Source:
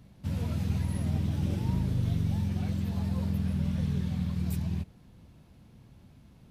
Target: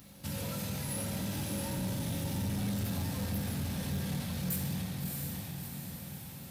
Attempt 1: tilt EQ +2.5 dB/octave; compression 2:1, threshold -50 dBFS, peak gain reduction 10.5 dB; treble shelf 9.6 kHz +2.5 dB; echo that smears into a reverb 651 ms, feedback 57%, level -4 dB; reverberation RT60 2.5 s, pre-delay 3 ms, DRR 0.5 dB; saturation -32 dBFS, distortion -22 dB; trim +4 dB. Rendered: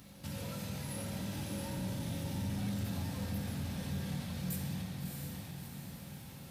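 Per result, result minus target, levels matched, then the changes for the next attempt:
compression: peak gain reduction +4 dB; 8 kHz band -2.5 dB
change: compression 2:1, threshold -41.5 dBFS, peak gain reduction 6.5 dB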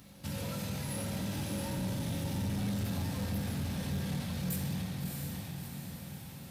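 8 kHz band -2.5 dB
change: treble shelf 9.6 kHz +10 dB

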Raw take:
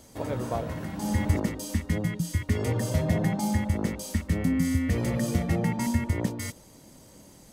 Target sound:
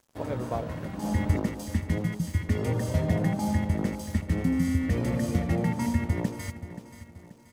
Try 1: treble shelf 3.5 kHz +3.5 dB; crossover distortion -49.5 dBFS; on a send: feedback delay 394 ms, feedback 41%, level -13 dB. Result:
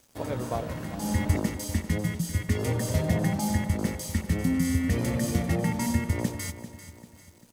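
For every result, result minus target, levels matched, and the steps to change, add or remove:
8 kHz band +7.5 dB; echo 136 ms early
change: treble shelf 3.5 kHz -6 dB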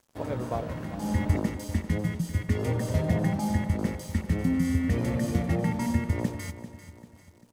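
echo 136 ms early
change: feedback delay 530 ms, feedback 41%, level -13 dB

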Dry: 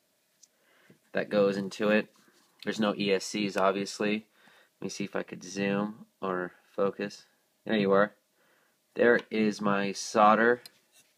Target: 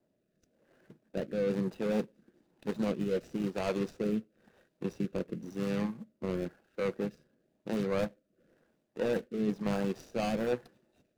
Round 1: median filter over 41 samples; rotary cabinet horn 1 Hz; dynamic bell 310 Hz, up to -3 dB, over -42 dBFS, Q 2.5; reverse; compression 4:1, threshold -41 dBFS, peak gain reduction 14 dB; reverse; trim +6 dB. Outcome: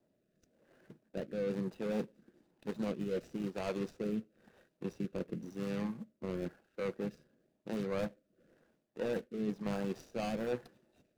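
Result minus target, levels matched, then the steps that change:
compression: peak gain reduction +5 dB
change: compression 4:1, threshold -34.5 dBFS, peak gain reduction 9 dB

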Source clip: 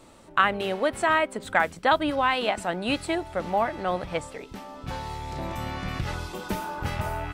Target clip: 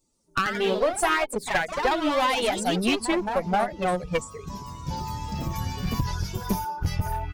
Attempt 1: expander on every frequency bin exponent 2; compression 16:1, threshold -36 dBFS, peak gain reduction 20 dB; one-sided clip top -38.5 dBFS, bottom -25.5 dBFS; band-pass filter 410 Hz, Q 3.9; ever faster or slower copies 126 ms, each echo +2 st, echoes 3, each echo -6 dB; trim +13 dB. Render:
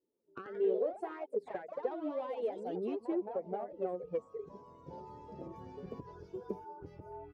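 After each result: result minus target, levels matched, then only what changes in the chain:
compression: peak gain reduction +5.5 dB; 500 Hz band +4.5 dB
change: compression 16:1, threshold -30 dBFS, peak gain reduction 14.5 dB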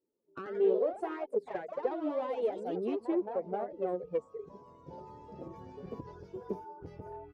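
500 Hz band +3.5 dB
remove: band-pass filter 410 Hz, Q 3.9

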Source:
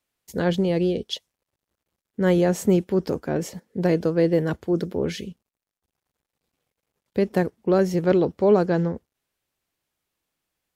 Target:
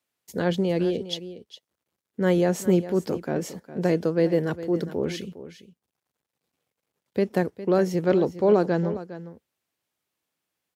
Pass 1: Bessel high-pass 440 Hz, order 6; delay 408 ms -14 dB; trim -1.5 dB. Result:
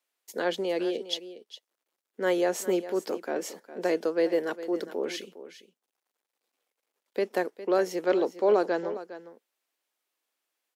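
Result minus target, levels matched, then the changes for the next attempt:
125 Hz band -17.0 dB
change: Bessel high-pass 110 Hz, order 6

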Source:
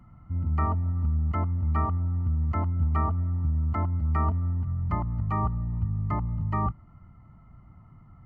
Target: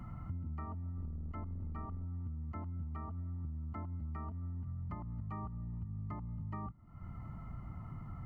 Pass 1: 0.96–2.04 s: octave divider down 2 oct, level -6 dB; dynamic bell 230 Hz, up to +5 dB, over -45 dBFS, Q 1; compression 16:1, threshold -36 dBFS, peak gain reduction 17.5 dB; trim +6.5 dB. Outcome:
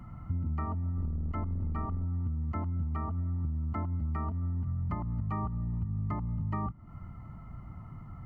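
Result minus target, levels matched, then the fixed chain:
compression: peak gain reduction -9 dB
0.96–2.04 s: octave divider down 2 oct, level -6 dB; dynamic bell 230 Hz, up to +5 dB, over -45 dBFS, Q 1; compression 16:1, threshold -45.5 dBFS, peak gain reduction 26.5 dB; trim +6.5 dB

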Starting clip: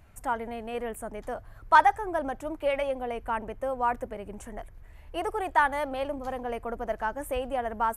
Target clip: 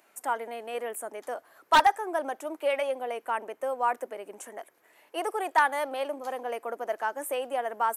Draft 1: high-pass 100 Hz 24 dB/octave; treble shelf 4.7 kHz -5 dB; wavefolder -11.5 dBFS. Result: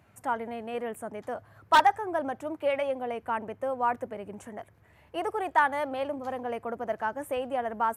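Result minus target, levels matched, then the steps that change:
125 Hz band +13.5 dB; 8 kHz band -7.5 dB
change: high-pass 310 Hz 24 dB/octave; change: treble shelf 4.7 kHz +7 dB

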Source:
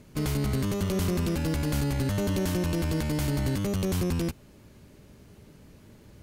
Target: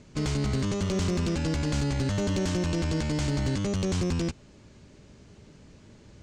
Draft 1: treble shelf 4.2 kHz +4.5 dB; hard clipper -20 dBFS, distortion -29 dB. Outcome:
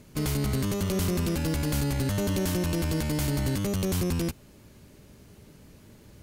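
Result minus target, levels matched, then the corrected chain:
8 kHz band +2.5 dB
steep low-pass 7.7 kHz 36 dB/octave; treble shelf 4.2 kHz +4.5 dB; hard clipper -20 dBFS, distortion -30 dB

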